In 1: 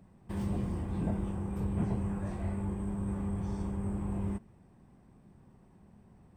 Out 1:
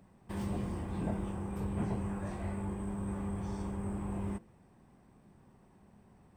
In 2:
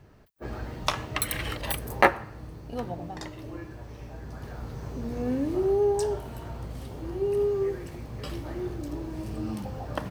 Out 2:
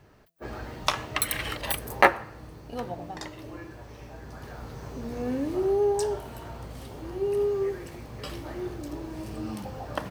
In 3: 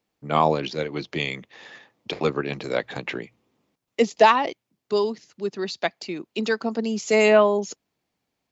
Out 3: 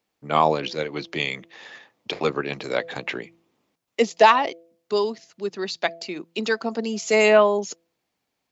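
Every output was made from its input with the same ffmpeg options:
-af "lowshelf=f=300:g=-6.5,bandreject=f=167.4:t=h:w=4,bandreject=f=334.8:t=h:w=4,bandreject=f=502.2:t=h:w=4,bandreject=f=669.6:t=h:w=4,volume=1.26"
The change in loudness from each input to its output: -2.5 LU, +1.0 LU, +0.5 LU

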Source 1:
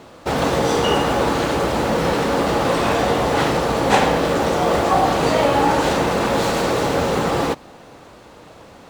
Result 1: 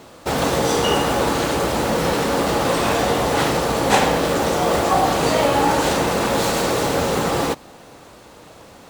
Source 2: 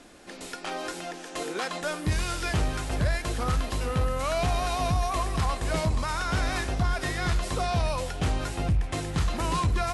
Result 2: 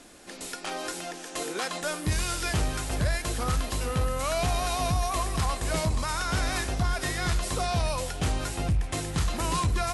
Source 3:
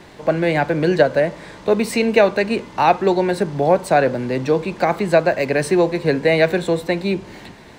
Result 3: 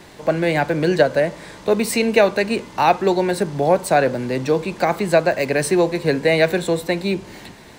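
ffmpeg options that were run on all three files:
-af "highshelf=f=6200:g=9.5,volume=0.891"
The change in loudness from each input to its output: -0.5 LU, -0.5 LU, -1.0 LU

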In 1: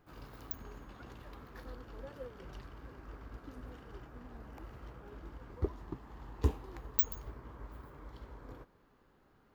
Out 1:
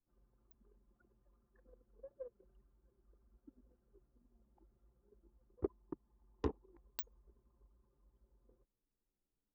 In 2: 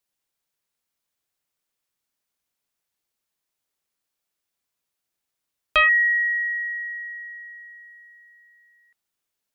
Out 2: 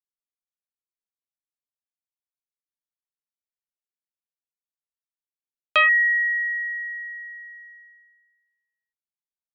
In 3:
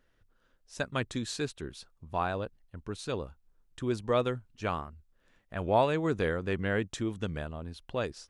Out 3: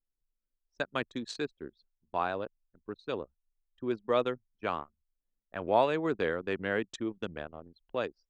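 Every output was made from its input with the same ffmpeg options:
-filter_complex "[0:a]acrossover=split=200 7700:gain=0.2 1 0.178[s0][s1][s2];[s0][s1][s2]amix=inputs=3:normalize=0,anlmdn=1"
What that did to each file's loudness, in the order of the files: -4.0 LU, 0.0 LU, -1.0 LU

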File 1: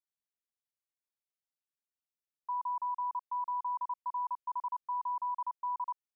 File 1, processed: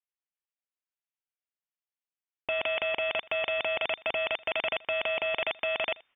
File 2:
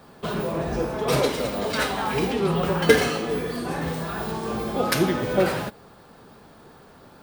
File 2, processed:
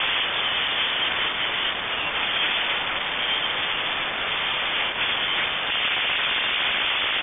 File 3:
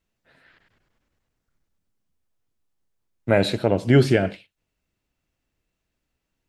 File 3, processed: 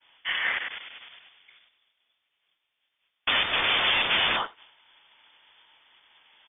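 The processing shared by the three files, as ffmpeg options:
-filter_complex "[0:a]asplit=2[s0][s1];[s1]highpass=f=720:p=1,volume=89.1,asoftclip=type=tanh:threshold=0.891[s2];[s0][s2]amix=inputs=2:normalize=0,lowpass=f=1200:p=1,volume=0.501,asplit=2[s3][s4];[s4]acompressor=threshold=0.0631:ratio=20,volume=0.891[s5];[s3][s5]amix=inputs=2:normalize=0,agate=range=0.0224:threshold=0.00562:ratio=3:detection=peak,aeval=exprs='(mod(5.31*val(0)+1,2)-1)/5.31':c=same,asplit=2[s6][s7];[s7]aecho=0:1:81:0.0708[s8];[s6][s8]amix=inputs=2:normalize=0,lowpass=f=3100:t=q:w=0.5098,lowpass=f=3100:t=q:w=0.6013,lowpass=f=3100:t=q:w=0.9,lowpass=f=3100:t=q:w=2.563,afreqshift=-3600,volume=0.794"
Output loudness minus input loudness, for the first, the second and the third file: +7.0 LU, +2.0 LU, -4.0 LU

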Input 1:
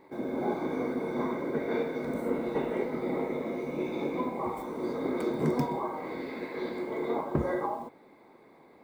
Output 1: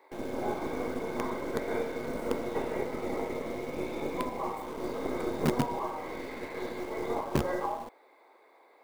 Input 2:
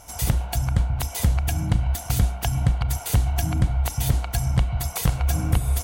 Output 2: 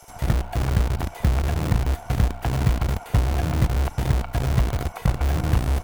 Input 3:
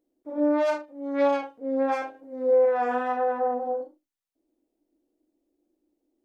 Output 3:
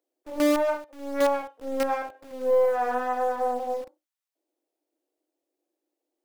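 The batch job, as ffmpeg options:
-filter_complex "[0:a]acrossover=split=410|2300[s0][s1][s2];[s0]acrusher=bits=5:dc=4:mix=0:aa=0.000001[s3];[s2]acompressor=threshold=0.00282:ratio=5[s4];[s3][s1][s4]amix=inputs=3:normalize=0"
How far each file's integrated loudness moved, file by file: -1.5 LU, 0.0 LU, -0.5 LU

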